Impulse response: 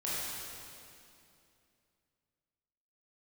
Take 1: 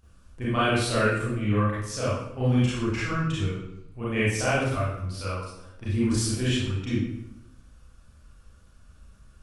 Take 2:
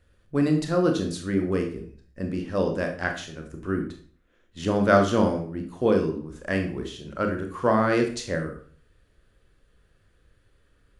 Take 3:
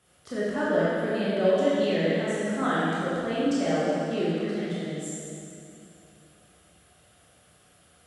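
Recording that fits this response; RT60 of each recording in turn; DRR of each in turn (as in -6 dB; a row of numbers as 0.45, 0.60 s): 3; 0.85, 0.45, 2.6 s; -10.0, 3.5, -9.0 dB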